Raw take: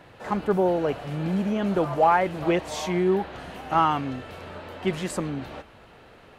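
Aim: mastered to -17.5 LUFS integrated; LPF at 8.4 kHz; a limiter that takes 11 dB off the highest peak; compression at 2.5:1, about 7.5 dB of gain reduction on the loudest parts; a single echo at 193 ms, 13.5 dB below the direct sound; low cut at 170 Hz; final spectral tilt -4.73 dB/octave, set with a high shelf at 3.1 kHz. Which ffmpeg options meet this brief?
-af "highpass=170,lowpass=8400,highshelf=f=3100:g=7,acompressor=threshold=0.0562:ratio=2.5,alimiter=level_in=1.06:limit=0.0631:level=0:latency=1,volume=0.944,aecho=1:1:193:0.211,volume=6.68"

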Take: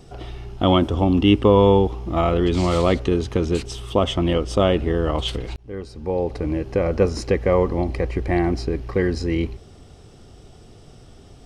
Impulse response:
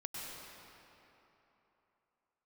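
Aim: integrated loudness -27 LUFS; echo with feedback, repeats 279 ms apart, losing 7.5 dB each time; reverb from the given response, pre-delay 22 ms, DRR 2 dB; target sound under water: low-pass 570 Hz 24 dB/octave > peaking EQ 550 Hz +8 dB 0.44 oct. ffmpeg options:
-filter_complex "[0:a]aecho=1:1:279|558|837|1116|1395:0.422|0.177|0.0744|0.0312|0.0131,asplit=2[s0][s1];[1:a]atrim=start_sample=2205,adelay=22[s2];[s1][s2]afir=irnorm=-1:irlink=0,volume=0.794[s3];[s0][s3]amix=inputs=2:normalize=0,lowpass=f=570:w=0.5412,lowpass=f=570:w=1.3066,equalizer=f=550:t=o:w=0.44:g=8,volume=0.282"

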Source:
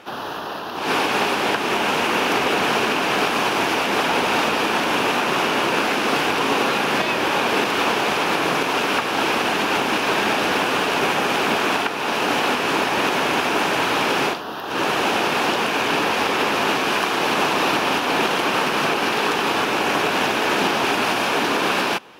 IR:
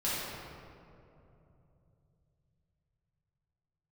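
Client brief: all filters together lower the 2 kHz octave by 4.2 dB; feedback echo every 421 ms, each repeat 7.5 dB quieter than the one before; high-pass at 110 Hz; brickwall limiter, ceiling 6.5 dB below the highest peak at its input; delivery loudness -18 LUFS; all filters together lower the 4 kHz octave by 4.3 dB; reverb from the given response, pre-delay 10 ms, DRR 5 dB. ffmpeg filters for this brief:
-filter_complex "[0:a]highpass=110,equalizer=f=2000:t=o:g=-4.5,equalizer=f=4000:t=o:g=-4,alimiter=limit=0.2:level=0:latency=1,aecho=1:1:421|842|1263|1684|2105:0.422|0.177|0.0744|0.0312|0.0131,asplit=2[s0][s1];[1:a]atrim=start_sample=2205,adelay=10[s2];[s1][s2]afir=irnorm=-1:irlink=0,volume=0.224[s3];[s0][s3]amix=inputs=2:normalize=0,volume=1.41"

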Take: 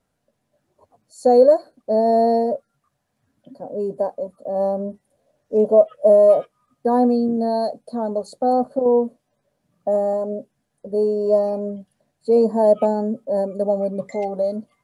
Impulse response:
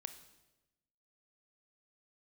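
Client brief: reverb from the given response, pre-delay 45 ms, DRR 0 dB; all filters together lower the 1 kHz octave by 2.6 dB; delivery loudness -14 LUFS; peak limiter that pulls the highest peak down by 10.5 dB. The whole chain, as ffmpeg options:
-filter_complex "[0:a]equalizer=f=1000:t=o:g=-4.5,alimiter=limit=0.168:level=0:latency=1,asplit=2[s0][s1];[1:a]atrim=start_sample=2205,adelay=45[s2];[s1][s2]afir=irnorm=-1:irlink=0,volume=1.5[s3];[s0][s3]amix=inputs=2:normalize=0,volume=2.66"

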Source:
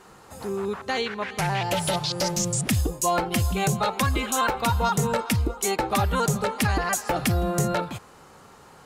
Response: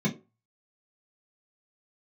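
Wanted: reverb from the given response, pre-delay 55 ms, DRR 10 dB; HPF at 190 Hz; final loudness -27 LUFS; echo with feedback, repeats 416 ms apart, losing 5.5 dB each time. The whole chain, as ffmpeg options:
-filter_complex "[0:a]highpass=190,aecho=1:1:416|832|1248|1664|2080|2496|2912:0.531|0.281|0.149|0.079|0.0419|0.0222|0.0118,asplit=2[s0][s1];[1:a]atrim=start_sample=2205,adelay=55[s2];[s1][s2]afir=irnorm=-1:irlink=0,volume=0.119[s3];[s0][s3]amix=inputs=2:normalize=0,volume=0.596"

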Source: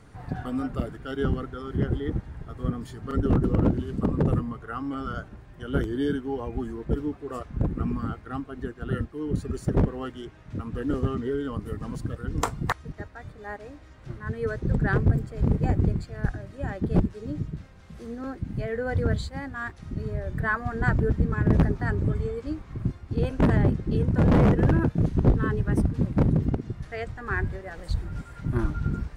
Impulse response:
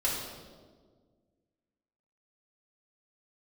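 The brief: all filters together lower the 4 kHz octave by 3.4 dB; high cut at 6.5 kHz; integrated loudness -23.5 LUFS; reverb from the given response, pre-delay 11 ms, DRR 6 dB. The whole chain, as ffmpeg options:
-filter_complex "[0:a]lowpass=6500,equalizer=f=4000:t=o:g=-4,asplit=2[s0][s1];[1:a]atrim=start_sample=2205,adelay=11[s2];[s1][s2]afir=irnorm=-1:irlink=0,volume=0.2[s3];[s0][s3]amix=inputs=2:normalize=0,volume=1.41"

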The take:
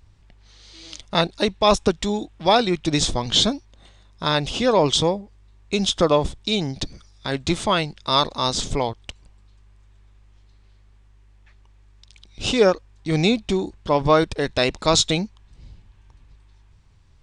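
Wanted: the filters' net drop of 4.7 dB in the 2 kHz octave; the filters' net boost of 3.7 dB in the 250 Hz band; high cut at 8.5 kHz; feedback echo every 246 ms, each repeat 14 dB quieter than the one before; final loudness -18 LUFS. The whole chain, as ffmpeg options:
-af "lowpass=8500,equalizer=f=250:t=o:g=5,equalizer=f=2000:t=o:g=-6.5,aecho=1:1:246|492:0.2|0.0399,volume=1.33"

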